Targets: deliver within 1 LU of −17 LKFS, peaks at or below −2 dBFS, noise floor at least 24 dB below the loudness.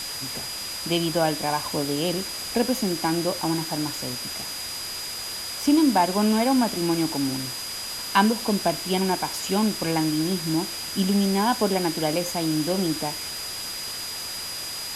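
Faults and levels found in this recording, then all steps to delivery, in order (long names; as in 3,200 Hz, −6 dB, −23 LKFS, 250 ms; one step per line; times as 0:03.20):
interfering tone 4,900 Hz; level of the tone −33 dBFS; background noise floor −33 dBFS; target noise floor −49 dBFS; integrated loudness −24.5 LKFS; sample peak −6.0 dBFS; target loudness −17.0 LKFS
→ notch filter 4,900 Hz, Q 30
broadband denoise 16 dB, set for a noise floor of −33 dBFS
level +7.5 dB
brickwall limiter −2 dBFS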